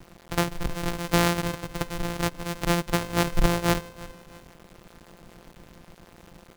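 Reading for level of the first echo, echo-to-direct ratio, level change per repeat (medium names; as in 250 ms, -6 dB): -19.0 dB, -18.5 dB, -7.5 dB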